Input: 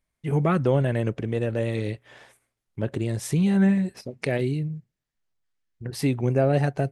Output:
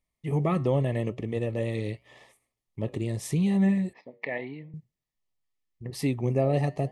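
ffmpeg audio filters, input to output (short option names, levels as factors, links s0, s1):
-filter_complex "[0:a]flanger=delay=3.9:depth=5.6:regen=-86:speed=0.83:shape=sinusoidal,asuperstop=centerf=1500:order=8:qfactor=3.8,asettb=1/sr,asplit=3[s0][s1][s2];[s0]atrim=end=3.934[s3];[s1]atrim=start=3.93:end=4.74,asetpts=PTS-STARTPTS,afade=t=in:d=0.004:c=qsin,afade=t=out:st=0.806:d=0.004:c=qsin,highpass=340,equalizer=f=380:t=q:w=4:g=-8,equalizer=f=580:t=q:w=4:g=-3,equalizer=f=930:t=q:w=4:g=5,equalizer=f=1300:t=q:w=4:g=-6,equalizer=f=1900:t=q:w=4:g=7,equalizer=f=2800:t=q:w=4:g=-5,lowpass=f=3000:w=0.5412,lowpass=f=3000:w=1.3066[s4];[s2]atrim=start=4.736[s5];[s3][s4]acrossfade=d=0.004:c1=hsin:c2=qsin[s6];[s6][s5]acrossfade=d=0.004:c1=qsin:c2=hsin,volume=1.12"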